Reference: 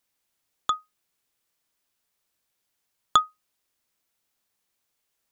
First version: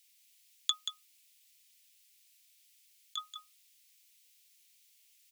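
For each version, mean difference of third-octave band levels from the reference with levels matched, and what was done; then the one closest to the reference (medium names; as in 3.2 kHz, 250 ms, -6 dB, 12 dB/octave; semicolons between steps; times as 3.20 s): 8.0 dB: steep high-pass 2.2 kHz 36 dB/octave; compressor with a negative ratio -34 dBFS, ratio -0.5; delay 182 ms -8 dB; trim +5 dB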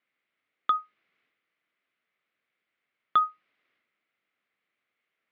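3.0 dB: peak limiter -15.5 dBFS, peak gain reduction 10.5 dB; transient shaper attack +2 dB, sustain +7 dB; cabinet simulation 180–3100 Hz, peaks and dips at 890 Hz -8 dB, 1.3 kHz +4 dB, 2.1 kHz +9 dB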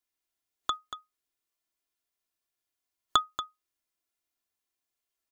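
1.0 dB: spectral noise reduction 8 dB; comb 2.9 ms, depth 52%; on a send: delay 234 ms -11 dB; on the sum: trim -3 dB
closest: third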